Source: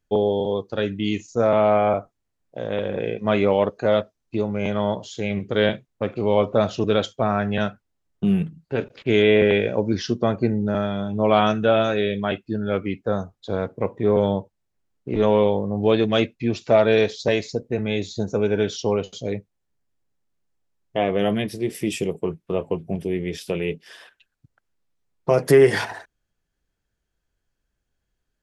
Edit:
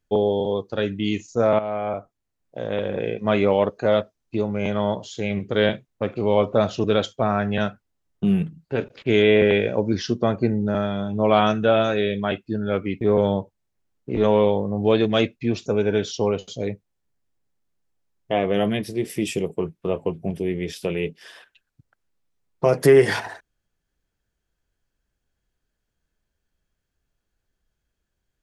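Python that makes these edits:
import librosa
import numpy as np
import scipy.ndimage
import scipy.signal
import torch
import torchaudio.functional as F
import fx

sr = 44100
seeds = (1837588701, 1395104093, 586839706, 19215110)

y = fx.edit(x, sr, fx.fade_in_from(start_s=1.59, length_s=1.03, floor_db=-12.5),
    fx.cut(start_s=13.01, length_s=0.99),
    fx.cut(start_s=16.65, length_s=1.66), tone=tone)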